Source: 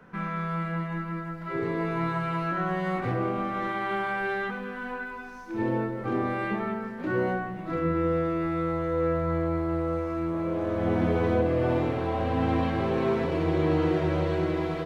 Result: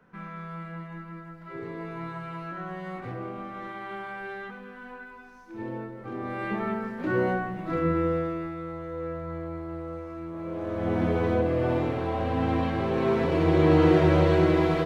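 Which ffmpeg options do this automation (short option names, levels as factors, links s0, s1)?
-af "volume=5.96,afade=t=in:st=6.17:d=0.55:silence=0.334965,afade=t=out:st=7.91:d=0.65:silence=0.334965,afade=t=in:st=10.31:d=0.71:silence=0.421697,afade=t=in:st=12.89:d=1.04:silence=0.473151"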